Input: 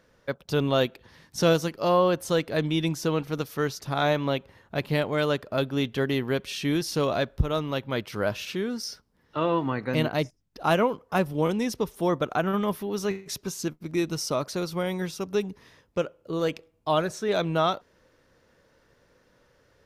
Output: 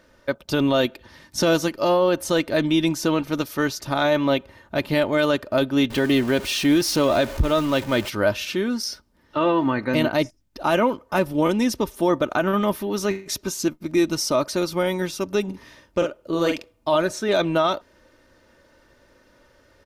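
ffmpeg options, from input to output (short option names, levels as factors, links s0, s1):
-filter_complex "[0:a]asettb=1/sr,asplit=3[s0][s1][s2];[s0]atrim=end=5.904[s3];[s1]atrim=start=5.9:end=8.1,asetpts=PTS-STARTPTS,afade=t=in:d=0.004:c=qsin,afade=t=out:st=2.196:d=0.004:c=qsin,aeval=exprs='val(0)+0.5*0.0178*sgn(val(0))':c=same[s4];[s2]atrim=start=8.096[s5];[s3][s4]acrossfade=d=0.004:c1=hsin:c2=qsin[s6];[s6][s5]acrossfade=d=0.004:c1=qsin:c2=hsin,asplit=3[s7][s8][s9];[s7]afade=t=out:st=15.47:d=0.02[s10];[s8]asplit=2[s11][s12];[s12]adelay=47,volume=0.562[s13];[s11][s13]amix=inputs=2:normalize=0,afade=t=in:st=15.47:d=0.02,afade=t=out:st=16.95:d=0.02[s14];[s9]afade=t=in:st=16.95:d=0.02[s15];[s10][s14][s15]amix=inputs=3:normalize=0,aecho=1:1:3.3:0.48,alimiter=limit=0.158:level=0:latency=1:release=23,volume=1.88"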